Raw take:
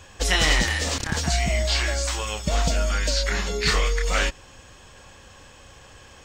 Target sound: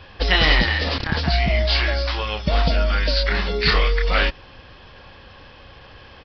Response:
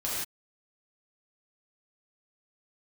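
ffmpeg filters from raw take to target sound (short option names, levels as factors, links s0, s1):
-af "aresample=11025,aresample=44100,volume=1.58"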